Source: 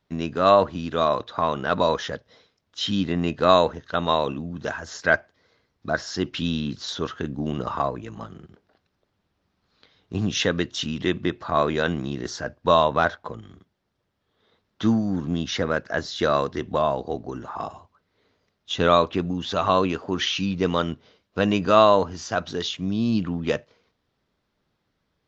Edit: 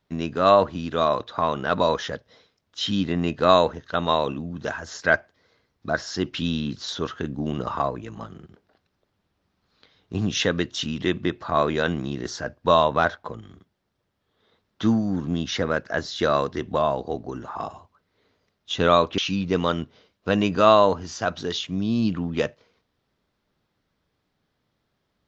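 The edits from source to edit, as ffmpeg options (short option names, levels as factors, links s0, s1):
-filter_complex "[0:a]asplit=2[s0][s1];[s0]atrim=end=19.182[s2];[s1]atrim=start=20.278[s3];[s2][s3]acrossfade=d=0.004:c1=hsin:c2=hsin"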